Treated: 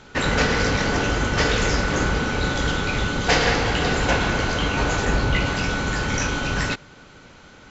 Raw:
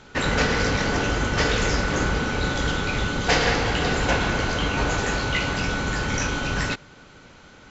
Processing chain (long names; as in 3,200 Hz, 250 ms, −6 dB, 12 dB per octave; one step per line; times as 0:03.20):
0:05.05–0:05.46: spectral tilt −1.5 dB per octave
level +1.5 dB